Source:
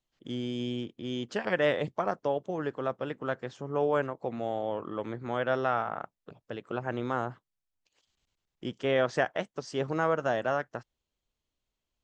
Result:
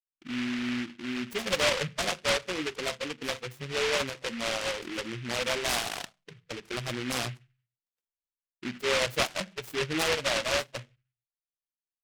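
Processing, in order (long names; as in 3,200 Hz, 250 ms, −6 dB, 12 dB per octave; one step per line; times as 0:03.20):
expanding power law on the bin magnitudes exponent 2.9
downward expander −58 dBFS
on a send at −11 dB: parametric band 1,300 Hz −11.5 dB 0.6 octaves + convolution reverb RT60 0.25 s, pre-delay 4 ms
on the sum: short delay modulated by noise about 2,100 Hz, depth 0.28 ms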